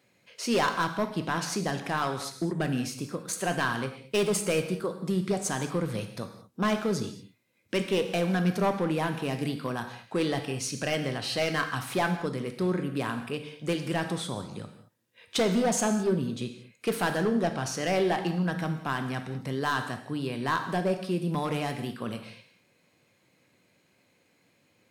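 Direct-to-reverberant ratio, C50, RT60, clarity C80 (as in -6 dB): 6.5 dB, 8.5 dB, not exponential, 10.5 dB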